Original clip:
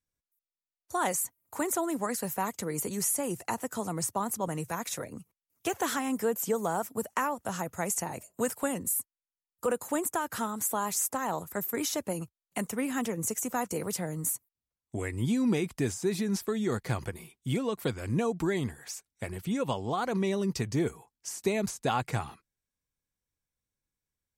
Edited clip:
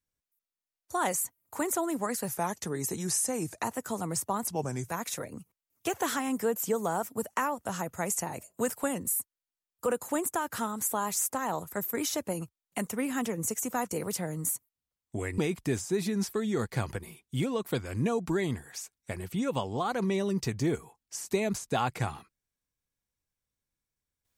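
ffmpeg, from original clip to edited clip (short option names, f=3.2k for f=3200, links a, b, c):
-filter_complex "[0:a]asplit=6[a][b][c][d][e][f];[a]atrim=end=2.284[g];[b]atrim=start=2.28:end=3.49,asetpts=PTS-STARTPTS,asetrate=39690,aresample=44100[h];[c]atrim=start=3.486:end=4.344[i];[d]atrim=start=4.34:end=4.65,asetpts=PTS-STARTPTS,asetrate=36162,aresample=44100[j];[e]atrim=start=4.646:end=15.182[k];[f]atrim=start=15.508[l];[g][h]acrossfade=d=0.004:c1=hsin:c2=hsin[m];[m][i]acrossfade=d=0.004:c1=hsin:c2=hsin[n];[n][j]acrossfade=d=0.004:c1=hsin:c2=hsin[o];[o][k]acrossfade=d=0.004:c1=hsin:c2=hsin[p];[p][l]acrossfade=d=0.004:c1=hsin:c2=hsin"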